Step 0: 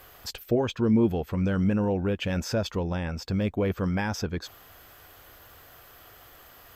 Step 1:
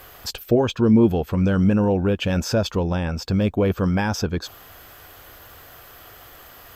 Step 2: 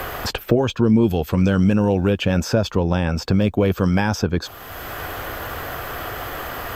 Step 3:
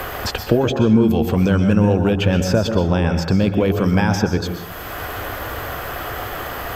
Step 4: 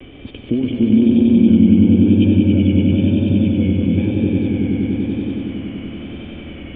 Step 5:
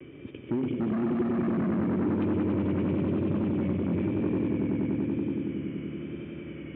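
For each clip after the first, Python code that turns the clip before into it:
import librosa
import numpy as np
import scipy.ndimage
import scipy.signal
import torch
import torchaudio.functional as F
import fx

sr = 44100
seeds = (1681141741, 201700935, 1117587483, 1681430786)

y1 = fx.dynamic_eq(x, sr, hz=2000.0, q=4.7, threshold_db=-57.0, ratio=4.0, max_db=-7)
y1 = F.gain(torch.from_numpy(y1), 6.5).numpy()
y2 = fx.band_squash(y1, sr, depth_pct=70)
y2 = F.gain(torch.from_numpy(y2), 2.0).numpy()
y3 = fx.rev_plate(y2, sr, seeds[0], rt60_s=0.71, hf_ratio=0.5, predelay_ms=110, drr_db=6.5)
y3 = F.gain(torch.from_numpy(y3), 1.0).numpy()
y4 = fx.formant_cascade(y3, sr, vowel='i')
y4 = fx.echo_swell(y4, sr, ms=95, loudest=5, wet_db=-4.5)
y4 = fx.vibrato(y4, sr, rate_hz=1.0, depth_cents=45.0)
y4 = F.gain(torch.from_numpy(y4), 5.0).numpy()
y5 = np.clip(10.0 ** (17.0 / 20.0) * y4, -1.0, 1.0) / 10.0 ** (17.0 / 20.0)
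y5 = fx.cabinet(y5, sr, low_hz=110.0, low_slope=12, high_hz=2500.0, hz=(150.0, 230.0, 360.0, 740.0), db=(8, -3, 7, -10))
y5 = F.gain(torch.from_numpy(y5), -8.0).numpy()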